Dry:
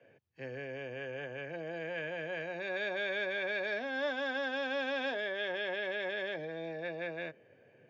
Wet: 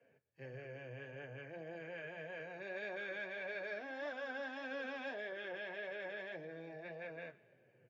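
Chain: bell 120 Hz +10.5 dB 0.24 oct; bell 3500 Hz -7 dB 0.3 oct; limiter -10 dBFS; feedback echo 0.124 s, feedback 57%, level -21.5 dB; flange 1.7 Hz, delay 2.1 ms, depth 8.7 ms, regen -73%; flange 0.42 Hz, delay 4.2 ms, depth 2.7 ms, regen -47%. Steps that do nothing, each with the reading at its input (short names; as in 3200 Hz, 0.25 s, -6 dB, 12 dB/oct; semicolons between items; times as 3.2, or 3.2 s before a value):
limiter -10 dBFS: input peak -24.0 dBFS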